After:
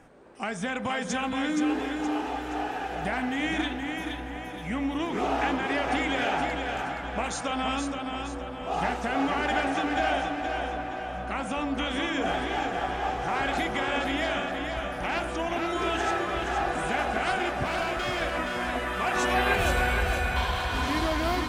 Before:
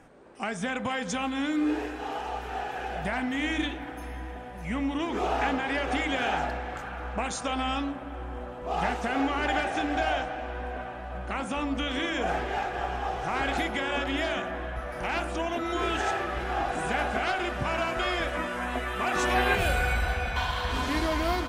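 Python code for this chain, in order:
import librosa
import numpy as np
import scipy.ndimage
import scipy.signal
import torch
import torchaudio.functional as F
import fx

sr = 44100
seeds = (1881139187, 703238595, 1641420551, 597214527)

p1 = fx.clip_hard(x, sr, threshold_db=-27.0, at=(17.64, 18.22))
y = p1 + fx.echo_feedback(p1, sr, ms=471, feedback_pct=43, wet_db=-5.5, dry=0)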